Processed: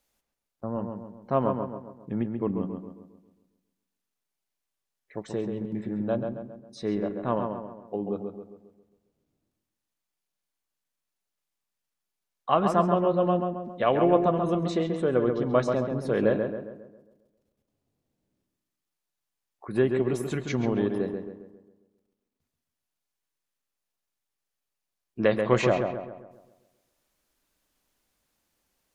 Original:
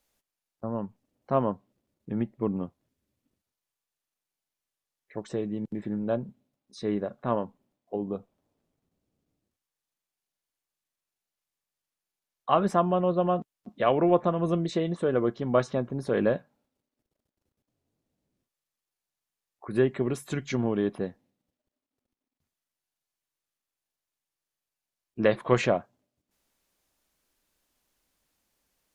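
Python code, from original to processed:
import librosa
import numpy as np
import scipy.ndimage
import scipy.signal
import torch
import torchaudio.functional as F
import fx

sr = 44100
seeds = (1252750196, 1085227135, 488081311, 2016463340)

y = fx.echo_filtered(x, sr, ms=135, feedback_pct=47, hz=2300.0, wet_db=-5)
y = fx.rev_freeverb(y, sr, rt60_s=0.86, hf_ratio=0.65, predelay_ms=70, drr_db=20.0)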